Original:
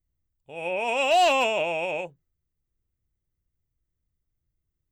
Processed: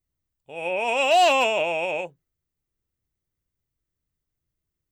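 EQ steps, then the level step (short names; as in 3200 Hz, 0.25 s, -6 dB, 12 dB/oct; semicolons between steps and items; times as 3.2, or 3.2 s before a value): low shelf 120 Hz -9.5 dB; +2.5 dB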